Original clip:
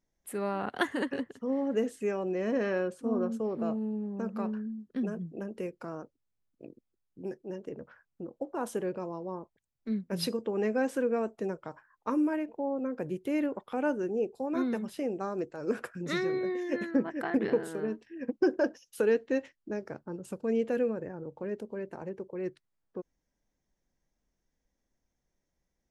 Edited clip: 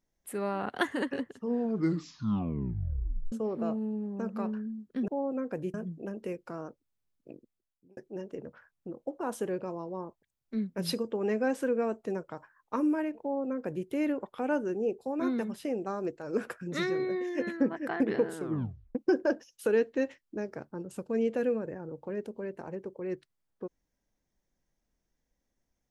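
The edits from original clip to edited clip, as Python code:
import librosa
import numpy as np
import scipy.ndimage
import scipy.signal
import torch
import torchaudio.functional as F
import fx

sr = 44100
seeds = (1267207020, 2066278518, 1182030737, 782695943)

y = fx.edit(x, sr, fx.tape_stop(start_s=1.33, length_s=1.99),
    fx.fade_out_span(start_s=6.65, length_s=0.66),
    fx.duplicate(start_s=12.55, length_s=0.66, to_s=5.08),
    fx.tape_stop(start_s=17.71, length_s=0.58), tone=tone)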